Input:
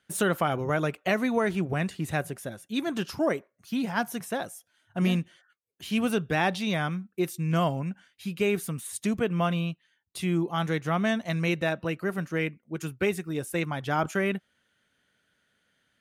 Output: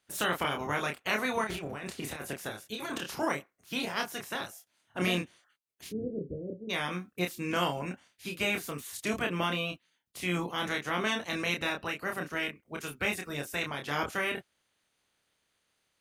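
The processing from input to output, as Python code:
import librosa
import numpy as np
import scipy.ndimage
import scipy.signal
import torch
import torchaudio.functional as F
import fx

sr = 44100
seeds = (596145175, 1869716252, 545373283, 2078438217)

y = fx.spec_clip(x, sr, under_db=18)
y = fx.over_compress(y, sr, threshold_db=-31.0, ratio=-0.5, at=(1.44, 3.2))
y = fx.steep_lowpass(y, sr, hz=540.0, slope=72, at=(5.88, 6.69), fade=0.02)
y = fx.doubler(y, sr, ms=28.0, db=-4.0)
y = y * librosa.db_to_amplitude(-6.0)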